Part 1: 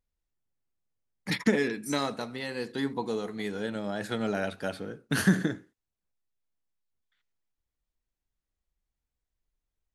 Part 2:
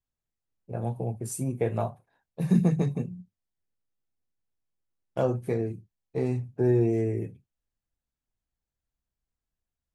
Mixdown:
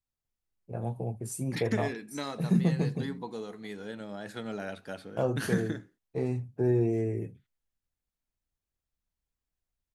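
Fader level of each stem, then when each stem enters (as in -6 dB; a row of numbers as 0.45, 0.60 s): -7.0, -3.0 dB; 0.25, 0.00 s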